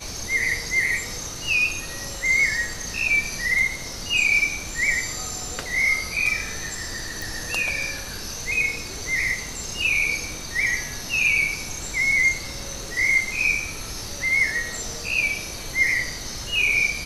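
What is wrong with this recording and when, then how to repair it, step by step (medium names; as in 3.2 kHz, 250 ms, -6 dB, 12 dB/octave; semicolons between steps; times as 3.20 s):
7.22 s: pop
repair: de-click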